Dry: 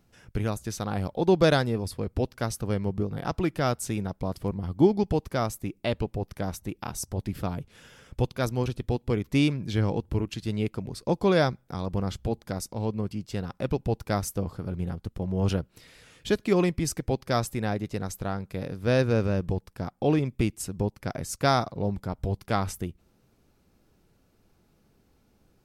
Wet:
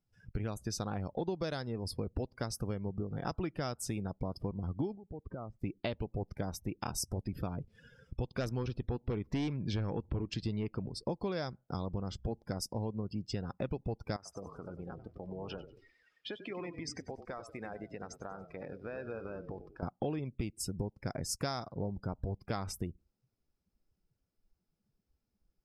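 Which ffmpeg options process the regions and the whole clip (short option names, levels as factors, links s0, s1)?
-filter_complex "[0:a]asettb=1/sr,asplit=3[s0][s1][s2];[s0]atrim=end=4.954[s3];[s1]atrim=start=4.95:end=5.59,asetpts=PTS-STARTPTS,afade=t=in:d=0.004:c=qsin,afade=t=out:st=0.636:d=0.004:c=qsin,lowpass=1600,acompressor=threshold=0.0141:ratio=12:attack=3.2:release=140:knee=1:detection=peak[s4];[s2]atrim=start=5.586[s5];[s3][s4]acrossfade=d=0.004:c1=hsin:c2=qsin[s6];[s6][s5]acrossfade=d=0.004:c1=qsin:c2=hsin,asettb=1/sr,asplit=3[s7][s8][s9];[s7]atrim=end=8.364[s10];[s8]atrim=start=8.36:end=10.88,asetpts=PTS-STARTPTS,afade=t=in:d=0.004:c=qsin,afade=t=out:st=2.516:d=0.004:c=qsin,highshelf=f=5100:g=-7.5,aeval=exprs='0.266*sin(PI/2*1.78*val(0)/0.266)':c=same[s11];[s9]atrim=start=10.876[s12];[s10][s11]acrossfade=d=0.004:c1=hsin:c2=qsin[s13];[s13][s12]acrossfade=d=0.004:c1=qsin:c2=hsin,asettb=1/sr,asplit=3[s14][s15][s16];[s14]atrim=end=14.164[s17];[s15]atrim=start=14.16:end=19.83,asetpts=PTS-STARTPTS,afade=t=in:d=0.004:c=qsin,afade=t=out:st=5.666:d=0.004:c=qsin,bandpass=f=1400:t=q:w=0.53,acompressor=threshold=0.0141:ratio=12:attack=3.2:release=140:knee=1:detection=peak,asplit=8[s18][s19][s20][s21][s22][s23][s24][s25];[s19]adelay=95,afreqshift=-31,volume=0.355[s26];[s20]adelay=190,afreqshift=-62,volume=0.209[s27];[s21]adelay=285,afreqshift=-93,volume=0.123[s28];[s22]adelay=380,afreqshift=-124,volume=0.0733[s29];[s23]adelay=475,afreqshift=-155,volume=0.0432[s30];[s24]adelay=570,afreqshift=-186,volume=0.0254[s31];[s25]adelay=665,afreqshift=-217,volume=0.015[s32];[s18][s26][s27][s28][s29][s30][s31][s32]amix=inputs=8:normalize=0,atrim=end_sample=250047[s33];[s16]atrim=start=19.826[s34];[s17][s33]acrossfade=d=0.004:c1=hsin:c2=qsin[s35];[s35][s34]acrossfade=d=0.004:c1=qsin:c2=hsin,afftdn=nr=23:nf=-46,equalizer=f=5100:w=6.5:g=9.5,acompressor=threshold=0.0251:ratio=12"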